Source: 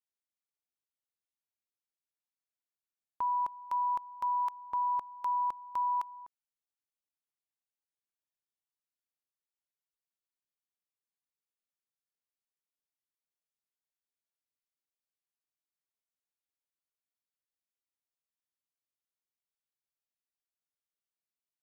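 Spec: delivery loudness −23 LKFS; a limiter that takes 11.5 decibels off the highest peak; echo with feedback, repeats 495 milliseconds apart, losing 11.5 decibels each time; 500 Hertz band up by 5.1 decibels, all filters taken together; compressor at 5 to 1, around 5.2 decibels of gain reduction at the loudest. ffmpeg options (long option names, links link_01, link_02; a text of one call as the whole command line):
ffmpeg -i in.wav -af "equalizer=frequency=500:width_type=o:gain=6.5,acompressor=threshold=-33dB:ratio=5,alimiter=level_in=12dB:limit=-24dB:level=0:latency=1,volume=-12dB,aecho=1:1:495|990|1485:0.266|0.0718|0.0194,volume=20.5dB" out.wav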